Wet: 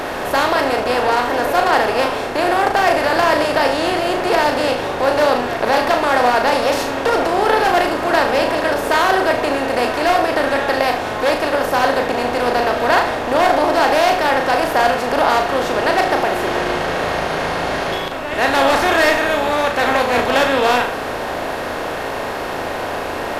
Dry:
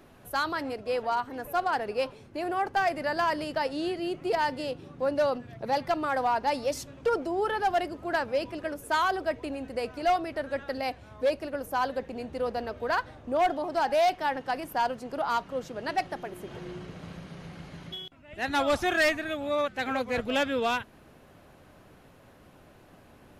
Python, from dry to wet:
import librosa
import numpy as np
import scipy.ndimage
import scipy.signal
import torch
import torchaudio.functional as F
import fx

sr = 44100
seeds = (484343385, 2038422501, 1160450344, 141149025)

y = fx.bin_compress(x, sr, power=0.4)
y = fx.room_flutter(y, sr, wall_m=6.3, rt60_s=0.38)
y = F.gain(torch.from_numpy(y), 4.5).numpy()